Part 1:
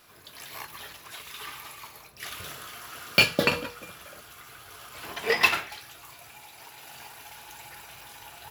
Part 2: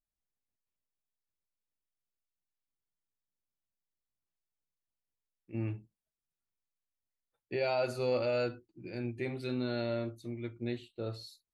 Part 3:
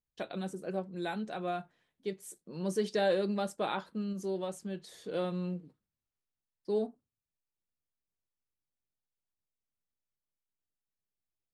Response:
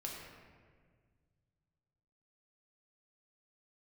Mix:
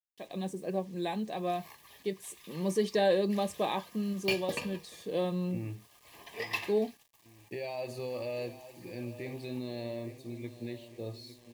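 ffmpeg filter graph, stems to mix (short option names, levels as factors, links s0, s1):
-filter_complex "[0:a]agate=range=0.0224:threshold=0.00794:ratio=3:detection=peak,adelay=1100,volume=0.211[s0];[1:a]alimiter=level_in=1.5:limit=0.0631:level=0:latency=1:release=114,volume=0.668,volume=0.841,asplit=2[s1][s2];[s2]volume=0.2[s3];[2:a]dynaudnorm=f=210:g=3:m=3.55,volume=0.376[s4];[s3]aecho=0:1:856|1712|2568|3424|4280|5136:1|0.44|0.194|0.0852|0.0375|0.0165[s5];[s0][s1][s4][s5]amix=inputs=4:normalize=0,acrusher=bits=9:mix=0:aa=0.000001,asuperstop=centerf=1400:order=8:qfactor=4"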